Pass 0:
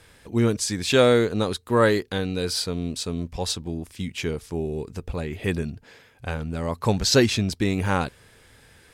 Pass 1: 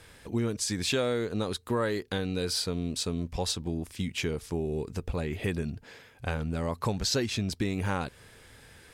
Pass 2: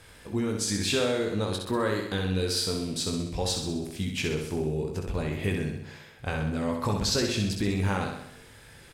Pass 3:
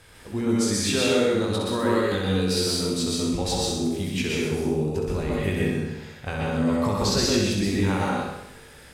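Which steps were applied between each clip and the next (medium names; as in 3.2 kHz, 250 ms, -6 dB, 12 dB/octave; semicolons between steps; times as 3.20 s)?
compression 4:1, threshold -27 dBFS, peak gain reduction 12.5 dB
doubling 20 ms -7 dB; flutter echo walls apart 11 m, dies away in 0.78 s
plate-style reverb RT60 0.65 s, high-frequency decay 0.75×, pre-delay 110 ms, DRR -2.5 dB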